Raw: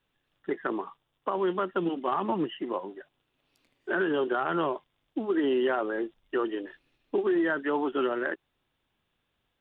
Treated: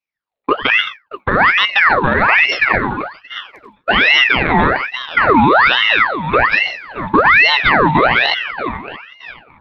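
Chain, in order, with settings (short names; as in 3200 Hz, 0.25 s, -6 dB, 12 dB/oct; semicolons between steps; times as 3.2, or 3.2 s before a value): low shelf 200 Hz +9.5 dB; split-band echo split 320 Hz, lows 98 ms, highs 0.622 s, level -13 dB; expander -36 dBFS; maximiser +20 dB; ring modulator with a swept carrier 1500 Hz, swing 65%, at 1.2 Hz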